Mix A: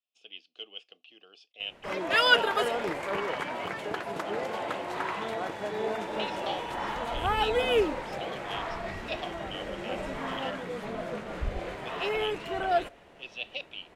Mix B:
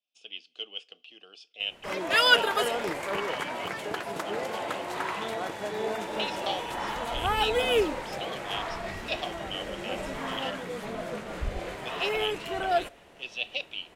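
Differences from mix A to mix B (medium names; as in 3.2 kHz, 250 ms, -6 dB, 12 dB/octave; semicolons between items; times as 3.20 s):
speech: send on; master: add treble shelf 5.3 kHz +9.5 dB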